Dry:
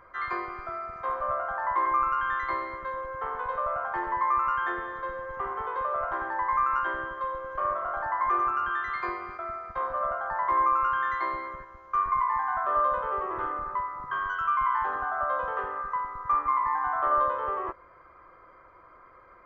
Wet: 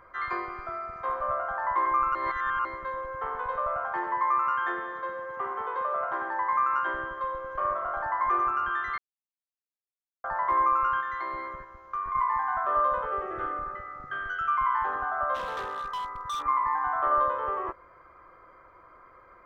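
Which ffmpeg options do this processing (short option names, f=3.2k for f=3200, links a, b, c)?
-filter_complex "[0:a]asettb=1/sr,asplit=3[a][b][c];[a]atrim=end=3.934[d];[b]atrim=start=3.93:end=6.89,asetpts=PTS-STARTPTS,afade=t=in:d=0.004:c=qsin,afade=t=out:st=2.956:d=0.004:c=qsin,highpass=170[e];[c]atrim=start=6.886[f];[d][e]acrossfade=d=0.004:c1=hsin:c2=qsin[g];[g][f]acrossfade=d=0.004:c1=qsin:c2=hsin,asettb=1/sr,asplit=3[h][i][j];[h]atrim=end=11.004[k];[i]atrim=start=11:end=12.15,asetpts=PTS-STARTPTS,afade=t=in:d=0.004:c=qsin,afade=t=out:st=1.146:d=0.004:c=qsin,acompressor=threshold=-30dB:ratio=3:attack=3.2:release=140:knee=1:detection=peak[l];[j]atrim=start=12.146[m];[k][l]acrossfade=d=0.004:c1=hsin:c2=qsin[n];[n][m]acrossfade=d=0.004:c1=qsin:c2=hsin,asettb=1/sr,asplit=3[o][p][q];[o]atrim=end=13.054[r];[p]atrim=start=13.05:end=14.58,asetpts=PTS-STARTPTS,afade=t=in:d=0.004:c=qsin,afade=t=out:st=1.526:d=0.004:c=qsin,asuperstop=centerf=1000:order=12:qfactor=3.6[s];[q]atrim=start=14.576[t];[r][s]acrossfade=d=0.004:c1=hsin:c2=qsin[u];[u][t]acrossfade=d=0.004:c1=qsin:c2=hsin,asplit=3[v][w][x];[v]afade=t=out:st=15.34:d=0.02[y];[w]volume=30dB,asoftclip=hard,volume=-30dB,afade=t=in:st=15.34:d=0.02,afade=t=out:st=16.43:d=0.02[z];[x]afade=t=in:st=16.43:d=0.02[aa];[y][z][aa]amix=inputs=3:normalize=0,asplit=5[ab][ac][ad][ae][af];[ab]atrim=end=2.152[ag];[ac]atrim=start=2.148:end=2.652,asetpts=PTS-STARTPTS,areverse[ah];[ad]atrim=start=2.648:end=8.98,asetpts=PTS-STARTPTS,afade=t=out:st=6.328:d=0.004:c=hsin[ai];[ae]atrim=start=8.98:end=10.24,asetpts=PTS-STARTPTS,volume=0[aj];[af]atrim=start=10.24,asetpts=PTS-STARTPTS,afade=t=in:d=0.004:c=hsin[ak];[ag][ah]acrossfade=d=0.004:c1=hsin:c2=hsin[al];[ai][aj][ak]concat=n=3:v=0:a=1[am];[al][am]acrossfade=d=0.004:c1=hsin:c2=hsin"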